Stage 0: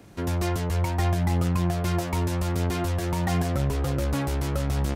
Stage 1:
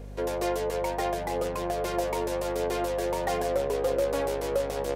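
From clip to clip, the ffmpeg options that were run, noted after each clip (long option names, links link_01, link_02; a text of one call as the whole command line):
ffmpeg -i in.wav -af "highpass=frequency=480:width_type=q:width=4.9,aeval=exprs='val(0)+0.0141*(sin(2*PI*50*n/s)+sin(2*PI*2*50*n/s)/2+sin(2*PI*3*50*n/s)/3+sin(2*PI*4*50*n/s)/4+sin(2*PI*5*50*n/s)/5)':channel_layout=same,bandreject=frequency=1300:width=14,volume=-2.5dB" out.wav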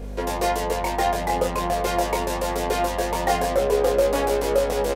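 ffmpeg -i in.wav -filter_complex "[0:a]asplit=2[link_01][link_02];[link_02]adelay=24,volume=-2.5dB[link_03];[link_01][link_03]amix=inputs=2:normalize=0,volume=6dB" out.wav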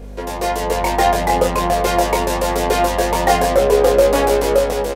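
ffmpeg -i in.wav -af "dynaudnorm=framelen=270:gausssize=5:maxgain=11.5dB" out.wav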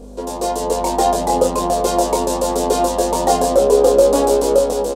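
ffmpeg -i in.wav -af "equalizer=frequency=125:width_type=o:width=1:gain=-6,equalizer=frequency=250:width_type=o:width=1:gain=9,equalizer=frequency=500:width_type=o:width=1:gain=5,equalizer=frequency=1000:width_type=o:width=1:gain=5,equalizer=frequency=2000:width_type=o:width=1:gain=-12,equalizer=frequency=4000:width_type=o:width=1:gain=4,equalizer=frequency=8000:width_type=o:width=1:gain=10,volume=-5.5dB" out.wav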